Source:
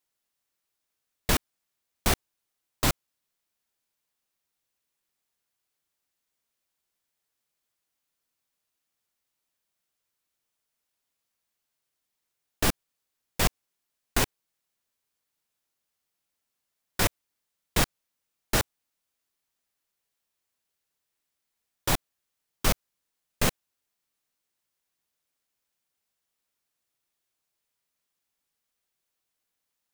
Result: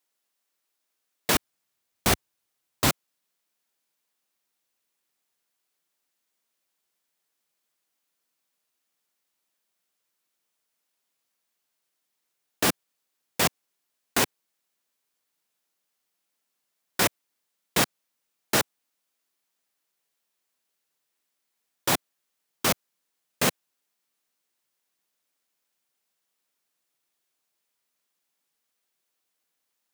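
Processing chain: HPF 230 Hz 12 dB/oct, from 1.35 s 76 Hz, from 2.89 s 170 Hz; gain +3 dB

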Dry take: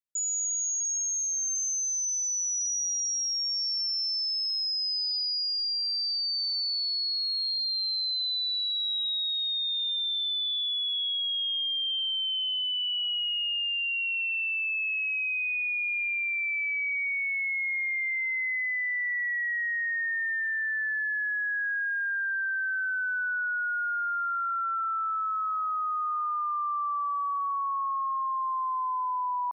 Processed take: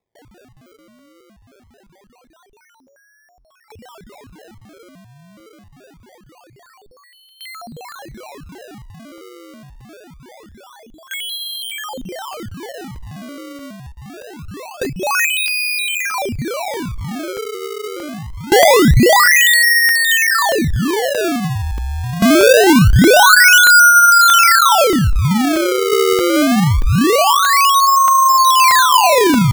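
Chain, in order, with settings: limiter -30.5 dBFS, peak gain reduction 4 dB; bell 1600 Hz +12 dB 2.2 oct; LFO low-pass saw down 0.27 Hz 890–2100 Hz; 14.38–15.26 comb 6.8 ms, depth 72%; tape echo 0.206 s, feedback 45%, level -15 dB, low-pass 5300 Hz; decimation with a swept rate 29×, swing 160% 0.24 Hz; crackling interface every 0.63 s, samples 64, zero, from 0.99; gain +6.5 dB

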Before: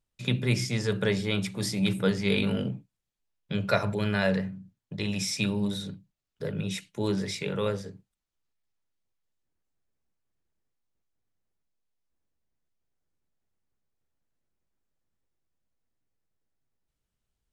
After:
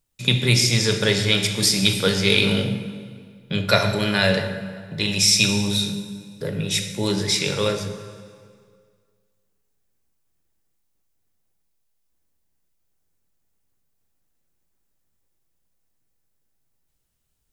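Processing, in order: high shelf 6700 Hz +11 dB; plate-style reverb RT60 1.9 s, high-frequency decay 0.9×, DRR 5 dB; dynamic EQ 4100 Hz, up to +7 dB, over -42 dBFS, Q 0.77; gain +5 dB

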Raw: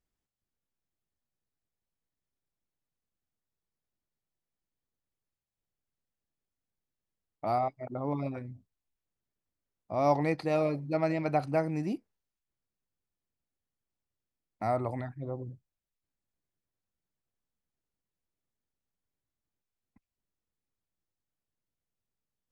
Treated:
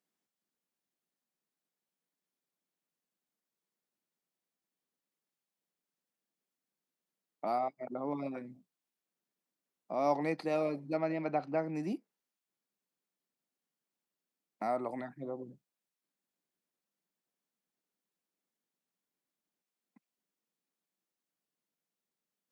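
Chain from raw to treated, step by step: steep high-pass 170 Hz 36 dB/oct; in parallel at +1.5 dB: compressor, threshold -41 dBFS, peak gain reduction 19.5 dB; 10.98–11.75 on the sum: air absorption 150 m; gain -5.5 dB

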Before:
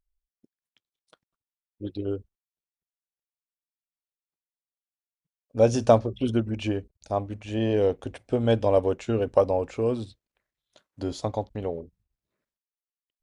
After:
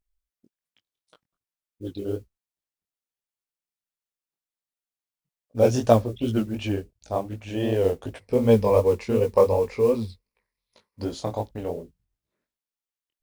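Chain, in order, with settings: 8.2–11.04 ripple EQ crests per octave 0.88, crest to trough 11 dB; modulation noise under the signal 29 dB; chorus 2.7 Hz, delay 17 ms, depth 7.8 ms; gain +3.5 dB

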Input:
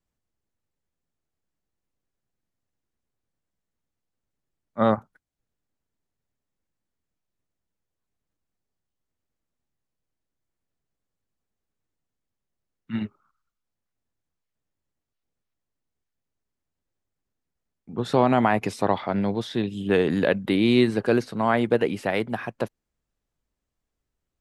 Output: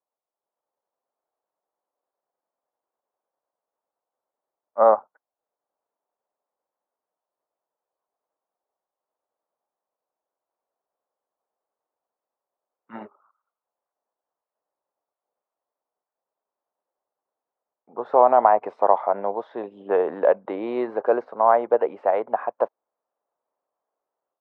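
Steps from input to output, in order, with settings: AGC gain up to 8 dB; Butterworth band-pass 760 Hz, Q 1.3; gain +3 dB

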